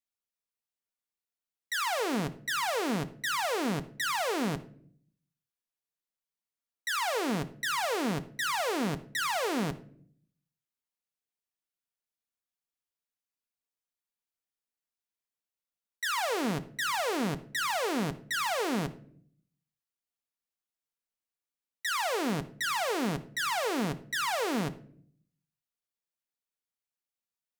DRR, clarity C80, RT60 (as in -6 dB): 9.0 dB, 20.0 dB, not exponential